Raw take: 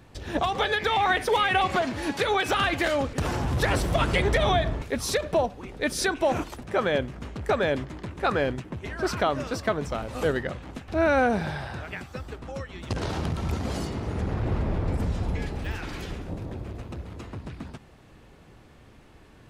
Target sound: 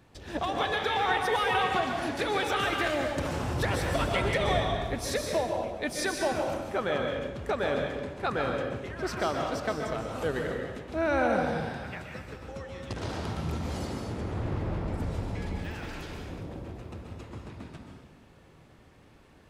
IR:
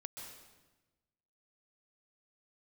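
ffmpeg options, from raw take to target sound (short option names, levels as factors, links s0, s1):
-filter_complex "[0:a]lowshelf=f=70:g=-6.5[s0];[1:a]atrim=start_sample=2205[s1];[s0][s1]afir=irnorm=-1:irlink=0"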